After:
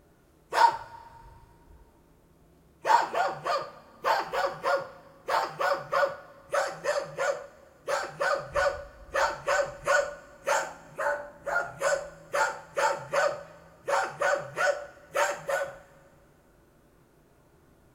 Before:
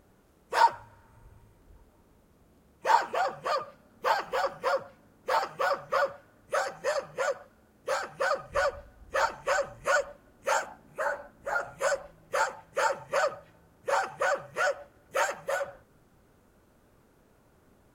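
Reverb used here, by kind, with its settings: two-slope reverb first 0.38 s, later 2.3 s, from -22 dB, DRR 5 dB

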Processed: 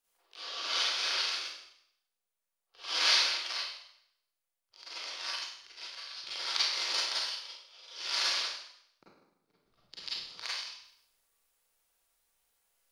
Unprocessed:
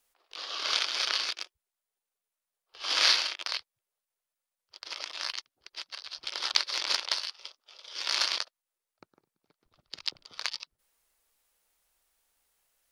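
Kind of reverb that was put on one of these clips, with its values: Schroeder reverb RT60 0.72 s, combs from 33 ms, DRR -8.5 dB; trim -10.5 dB

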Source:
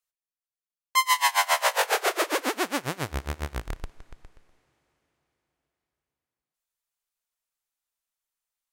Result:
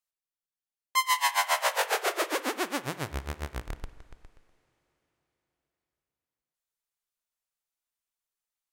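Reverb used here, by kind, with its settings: spring tank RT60 1.2 s, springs 45 ms, chirp 55 ms, DRR 15 dB; trim -3.5 dB

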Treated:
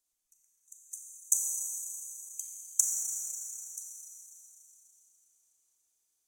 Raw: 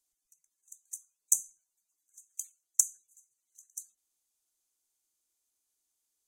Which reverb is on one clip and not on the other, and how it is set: Schroeder reverb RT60 3.6 s, combs from 28 ms, DRR -0.5 dB; trim -1.5 dB

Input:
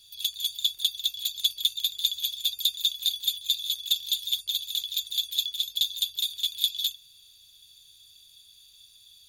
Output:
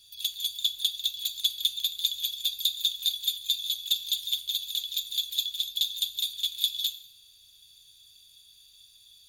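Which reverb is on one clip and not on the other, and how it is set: plate-style reverb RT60 0.79 s, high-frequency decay 1×, DRR 12 dB; trim -1.5 dB

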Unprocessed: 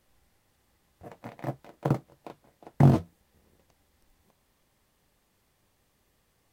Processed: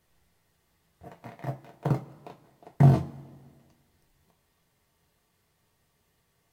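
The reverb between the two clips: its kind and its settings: two-slope reverb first 0.21 s, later 1.6 s, from -20 dB, DRR 2.5 dB; trim -3 dB

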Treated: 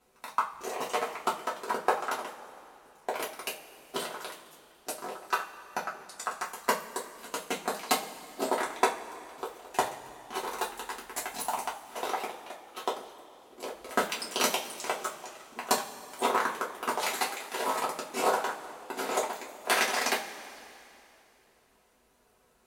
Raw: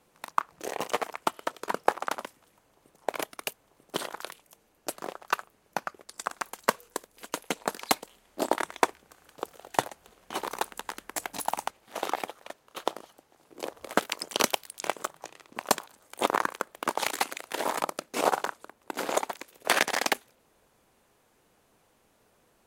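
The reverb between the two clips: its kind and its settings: two-slope reverb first 0.24 s, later 2.8 s, from -21 dB, DRR -5.5 dB; trim -7 dB

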